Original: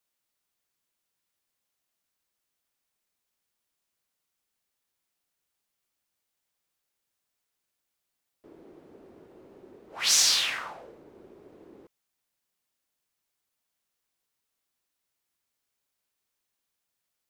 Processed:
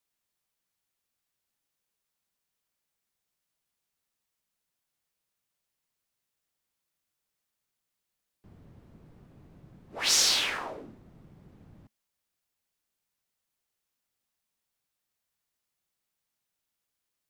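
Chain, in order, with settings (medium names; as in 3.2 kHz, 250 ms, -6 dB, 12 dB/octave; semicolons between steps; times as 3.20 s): dynamic bell 640 Hz, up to +6 dB, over -49 dBFS, Q 0.87; frequency shift -230 Hz; trim -2 dB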